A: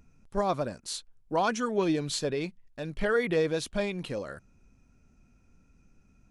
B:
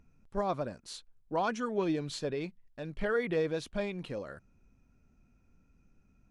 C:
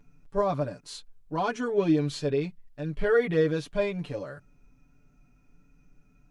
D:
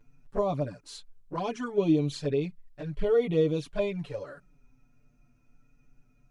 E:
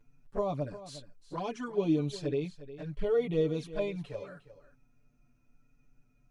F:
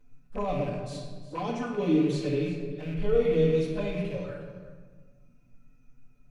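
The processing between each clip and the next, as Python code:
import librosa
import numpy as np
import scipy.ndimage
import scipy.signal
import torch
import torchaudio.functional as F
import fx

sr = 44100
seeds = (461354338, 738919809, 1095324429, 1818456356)

y1 = fx.high_shelf(x, sr, hz=5200.0, db=-9.5)
y1 = y1 * 10.0 ** (-4.0 / 20.0)
y2 = fx.hpss(y1, sr, part='percussive', gain_db=-7)
y2 = y2 + 0.9 * np.pad(y2, (int(6.9 * sr / 1000.0), 0))[:len(y2)]
y2 = y2 * 10.0 ** (5.0 / 20.0)
y3 = fx.env_flanger(y2, sr, rest_ms=9.4, full_db=-23.0)
y4 = y3 + 10.0 ** (-15.0 / 20.0) * np.pad(y3, (int(356 * sr / 1000.0), 0))[:len(y3)]
y4 = y4 * 10.0 ** (-4.0 / 20.0)
y5 = fx.rattle_buzz(y4, sr, strikes_db=-43.0, level_db=-39.0)
y5 = fx.room_shoebox(y5, sr, seeds[0], volume_m3=1200.0, walls='mixed', distance_m=2.0)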